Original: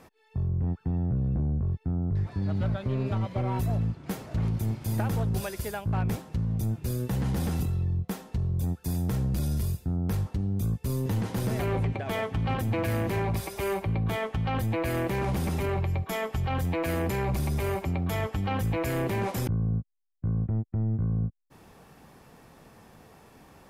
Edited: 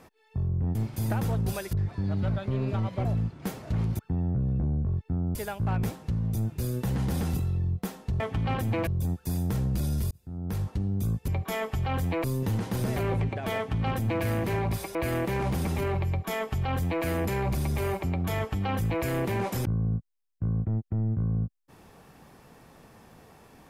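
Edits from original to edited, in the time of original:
0.75–2.11 swap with 4.63–5.61
3.43–3.69 cut
9.7–10.29 fade in
12.2–12.87 copy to 8.46
13.58–14.77 cut
15.89–16.85 copy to 10.87

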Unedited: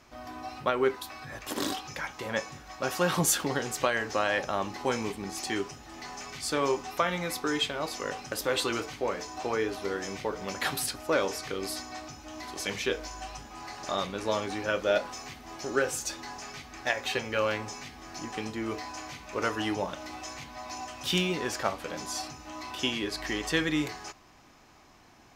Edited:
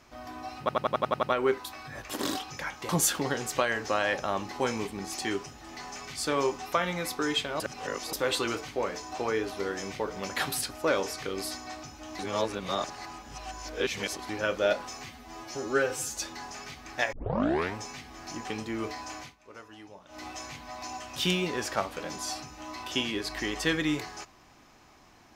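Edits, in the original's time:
0.6 stutter 0.09 s, 8 plays
2.26–3.14 cut
7.85–8.38 reverse
12.44–14.54 reverse
15.31–16.06 stretch 1.5×
17 tape start 0.63 s
19.07–20.1 dip -18 dB, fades 0.16 s

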